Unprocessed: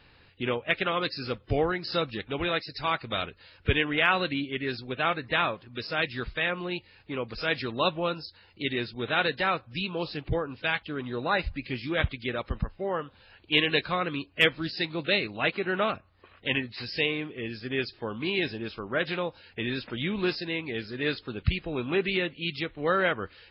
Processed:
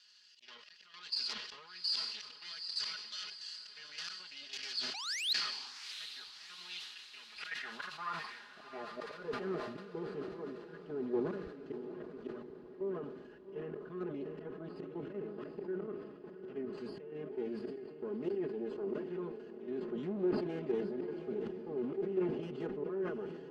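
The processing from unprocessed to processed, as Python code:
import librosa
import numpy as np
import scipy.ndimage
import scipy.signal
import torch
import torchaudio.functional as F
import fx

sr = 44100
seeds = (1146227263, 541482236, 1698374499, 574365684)

p1 = fx.lower_of_two(x, sr, delay_ms=0.65)
p2 = fx.env_lowpass_down(p1, sr, base_hz=1700.0, full_db=-23.5)
p3 = p2 + 0.87 * np.pad(p2, (int(4.8 * sr / 1000.0), 0))[:len(p2)]
p4 = fx.auto_swell(p3, sr, attack_ms=628.0)
p5 = fx.level_steps(p4, sr, step_db=11)
p6 = fx.spec_paint(p5, sr, seeds[0], shape='rise', start_s=4.94, length_s=0.39, low_hz=740.0, high_hz=4300.0, level_db=-28.0)
p7 = 10.0 ** (-38.0 / 20.0) * np.tanh(p6 / 10.0 ** (-38.0 / 20.0))
p8 = fx.filter_sweep_bandpass(p7, sr, from_hz=4800.0, to_hz=370.0, start_s=6.48, end_s=9.54, q=3.4)
p9 = p8 + fx.echo_diffused(p8, sr, ms=743, feedback_pct=56, wet_db=-10.0, dry=0)
p10 = fx.sustainer(p9, sr, db_per_s=49.0)
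y = p10 * 10.0 ** (13.5 / 20.0)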